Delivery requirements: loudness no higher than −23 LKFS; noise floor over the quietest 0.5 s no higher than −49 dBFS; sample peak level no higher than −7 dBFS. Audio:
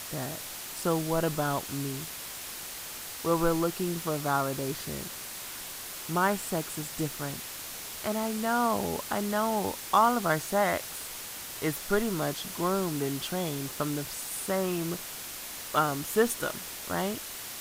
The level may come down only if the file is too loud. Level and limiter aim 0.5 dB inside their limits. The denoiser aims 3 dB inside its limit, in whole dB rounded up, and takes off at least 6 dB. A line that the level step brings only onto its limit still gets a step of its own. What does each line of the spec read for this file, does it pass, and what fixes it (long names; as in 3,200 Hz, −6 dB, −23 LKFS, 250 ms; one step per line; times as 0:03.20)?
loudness −30.5 LKFS: in spec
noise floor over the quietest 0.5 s −40 dBFS: out of spec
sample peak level −10.0 dBFS: in spec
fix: broadband denoise 12 dB, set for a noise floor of −40 dBFS